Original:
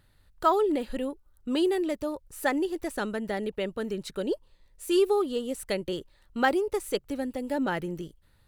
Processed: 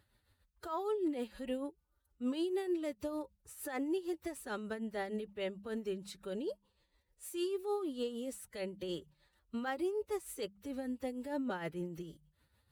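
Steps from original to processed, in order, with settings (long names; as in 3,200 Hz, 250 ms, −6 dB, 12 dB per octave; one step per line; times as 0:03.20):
high-pass filter 41 Hz 24 dB per octave
mains-hum notches 50/100/150/200 Hz
brickwall limiter −23 dBFS, peak gain reduction 13 dB
phase-vocoder stretch with locked phases 1.5×
amplitude tremolo 6.6 Hz, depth 56%
level −4.5 dB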